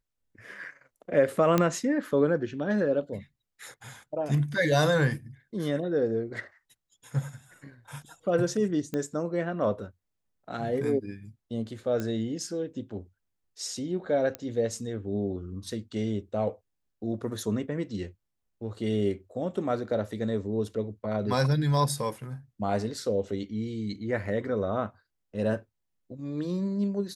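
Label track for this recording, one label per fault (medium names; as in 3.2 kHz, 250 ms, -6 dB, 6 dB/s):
1.580000	1.580000	pop -10 dBFS
8.940000	8.940000	pop -19 dBFS
12.000000	12.000000	pop -19 dBFS
14.350000	14.350000	pop -17 dBFS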